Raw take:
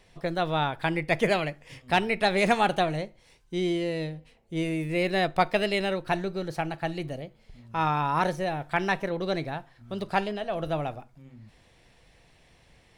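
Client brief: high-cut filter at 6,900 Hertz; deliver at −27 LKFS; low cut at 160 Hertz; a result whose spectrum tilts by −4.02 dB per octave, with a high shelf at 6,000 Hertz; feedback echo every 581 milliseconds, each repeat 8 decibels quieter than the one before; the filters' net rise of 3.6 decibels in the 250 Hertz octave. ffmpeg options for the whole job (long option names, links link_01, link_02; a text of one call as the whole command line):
ffmpeg -i in.wav -af "highpass=160,lowpass=6900,equalizer=frequency=250:width_type=o:gain=7.5,highshelf=frequency=6000:gain=5.5,aecho=1:1:581|1162|1743|2324|2905:0.398|0.159|0.0637|0.0255|0.0102,volume=-1dB" out.wav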